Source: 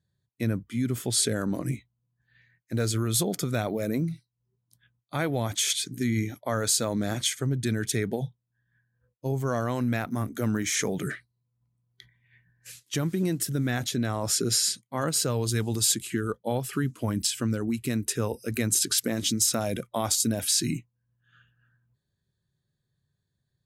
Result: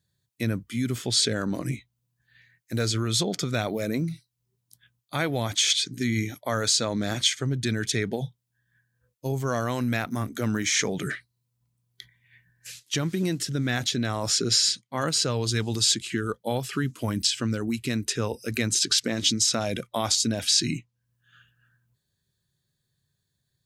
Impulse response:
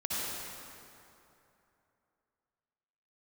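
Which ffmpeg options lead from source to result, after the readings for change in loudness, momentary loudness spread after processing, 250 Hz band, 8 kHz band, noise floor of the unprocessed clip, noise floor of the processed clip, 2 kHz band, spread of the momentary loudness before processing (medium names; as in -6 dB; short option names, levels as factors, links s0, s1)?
+1.5 dB, 10 LU, 0.0 dB, 0.0 dB, -81 dBFS, -79 dBFS, +4.0 dB, 9 LU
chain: -filter_complex "[0:a]highshelf=f=2300:g=10,acrossover=split=6200[s0][s1];[s1]acompressor=threshold=0.00355:ratio=6[s2];[s0][s2]amix=inputs=2:normalize=0"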